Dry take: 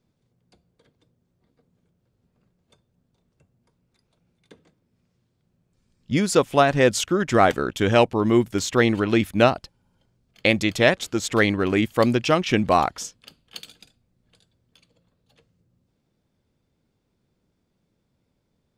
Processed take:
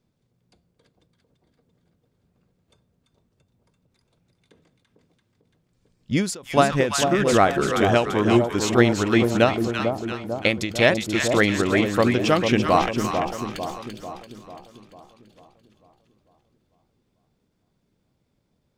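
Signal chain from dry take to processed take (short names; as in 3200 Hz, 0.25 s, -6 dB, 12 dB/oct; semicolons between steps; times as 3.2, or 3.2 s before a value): 12.81–13.57 half-wave gain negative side -12 dB; split-band echo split 1000 Hz, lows 0.446 s, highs 0.339 s, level -5.5 dB; ending taper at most 130 dB/s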